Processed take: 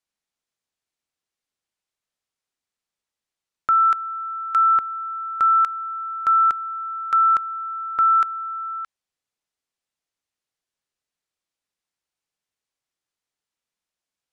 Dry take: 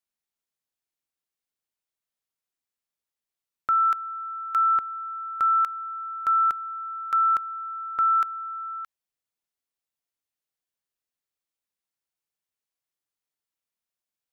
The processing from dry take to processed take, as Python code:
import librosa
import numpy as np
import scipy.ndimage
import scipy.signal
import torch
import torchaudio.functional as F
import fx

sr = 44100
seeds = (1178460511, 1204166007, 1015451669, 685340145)

y = scipy.signal.sosfilt(scipy.signal.butter(2, 8600.0, 'lowpass', fs=sr, output='sos'), x)
y = y * librosa.db_to_amplitude(4.5)